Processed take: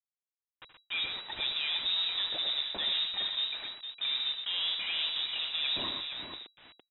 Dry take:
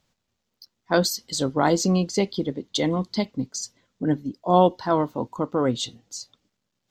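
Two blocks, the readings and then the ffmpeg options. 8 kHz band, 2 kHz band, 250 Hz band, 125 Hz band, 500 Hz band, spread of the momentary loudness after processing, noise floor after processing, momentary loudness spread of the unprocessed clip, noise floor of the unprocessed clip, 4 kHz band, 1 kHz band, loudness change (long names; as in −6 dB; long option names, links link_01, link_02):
below −40 dB, −2.5 dB, −30.0 dB, below −30 dB, −27.5 dB, 9 LU, below −85 dBFS, 12 LU, −79 dBFS, +5.5 dB, −21.0 dB, −6.5 dB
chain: -af "equalizer=frequency=1500:width=4.7:gain=14,areverse,acompressor=threshold=-31dB:ratio=6,areverse,alimiter=level_in=6.5dB:limit=-24dB:level=0:latency=1:release=36,volume=-6.5dB,dynaudnorm=framelen=370:gausssize=3:maxgain=5dB,aeval=exprs='0.0562*(cos(1*acos(clip(val(0)/0.0562,-1,1)))-cos(1*PI/2))+0.00891*(cos(5*acos(clip(val(0)/0.0562,-1,1)))-cos(5*PI/2))+0.00316*(cos(8*acos(clip(val(0)/0.0562,-1,1)))-cos(8*PI/2))':channel_layout=same,aresample=11025,acrusher=bits=6:mix=0:aa=0.000001,aresample=44100,aecho=1:1:75|84|124|459:0.266|0.2|0.422|0.376,lowpass=frequency=3300:width_type=q:width=0.5098,lowpass=frequency=3300:width_type=q:width=0.6013,lowpass=frequency=3300:width_type=q:width=0.9,lowpass=frequency=3300:width_type=q:width=2.563,afreqshift=-3900"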